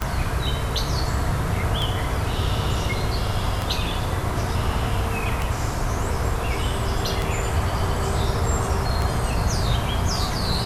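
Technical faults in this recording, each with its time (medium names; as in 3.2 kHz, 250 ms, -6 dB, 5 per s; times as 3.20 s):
tick 33 1/3 rpm -10 dBFS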